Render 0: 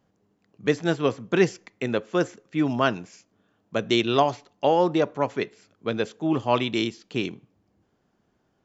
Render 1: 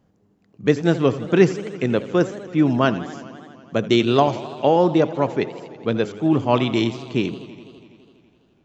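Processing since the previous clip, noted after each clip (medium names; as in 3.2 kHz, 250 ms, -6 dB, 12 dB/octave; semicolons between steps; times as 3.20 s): bass shelf 440 Hz +7.5 dB; modulated delay 83 ms, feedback 80%, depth 173 cents, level -16.5 dB; trim +1 dB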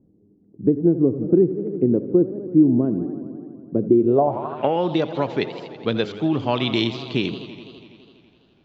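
compression 6:1, threshold -18 dBFS, peak gain reduction 10 dB; low-pass sweep 340 Hz -> 4 kHz, 3.98–4.93 s; trim +1 dB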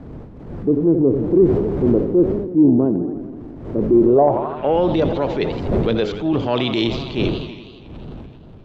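wind noise 230 Hz -30 dBFS; dynamic bell 470 Hz, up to +6 dB, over -29 dBFS, Q 1.1; transient shaper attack -6 dB, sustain +5 dB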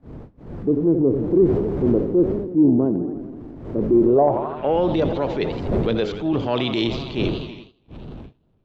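gate -36 dBFS, range -20 dB; trim -2.5 dB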